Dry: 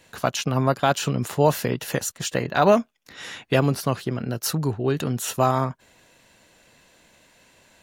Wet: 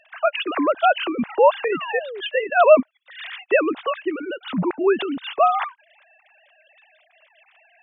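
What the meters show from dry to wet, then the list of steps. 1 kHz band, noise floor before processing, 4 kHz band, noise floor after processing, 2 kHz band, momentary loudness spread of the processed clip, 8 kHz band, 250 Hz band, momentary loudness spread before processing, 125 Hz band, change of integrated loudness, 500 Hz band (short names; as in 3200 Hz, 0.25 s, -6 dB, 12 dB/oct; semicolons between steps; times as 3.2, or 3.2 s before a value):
+4.5 dB, -61 dBFS, +0.5 dB, -61 dBFS, +6.0 dB, 13 LU, under -40 dB, 0.0 dB, 8 LU, -14.5 dB, +3.0 dB, +5.0 dB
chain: sine-wave speech; high shelf 2800 Hz +11 dB; painted sound fall, 1.72–2.21, 370–1500 Hz -34 dBFS; gain +2 dB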